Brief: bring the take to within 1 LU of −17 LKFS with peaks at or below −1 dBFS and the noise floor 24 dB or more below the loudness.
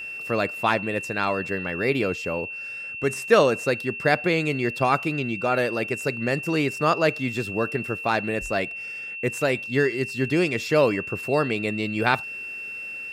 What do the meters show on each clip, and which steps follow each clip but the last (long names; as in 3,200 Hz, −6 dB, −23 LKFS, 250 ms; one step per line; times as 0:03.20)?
interfering tone 2,700 Hz; level of the tone −32 dBFS; integrated loudness −24.5 LKFS; sample peak −3.5 dBFS; target loudness −17.0 LKFS
→ notch filter 2,700 Hz, Q 30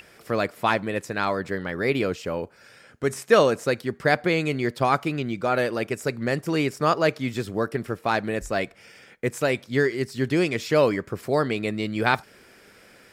interfering tone none found; integrated loudness −25.0 LKFS; sample peak −4.0 dBFS; target loudness −17.0 LKFS
→ level +8 dB
brickwall limiter −1 dBFS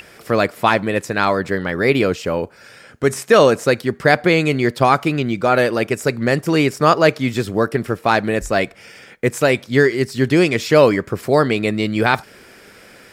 integrated loudness −17.0 LKFS; sample peak −1.0 dBFS; background noise floor −45 dBFS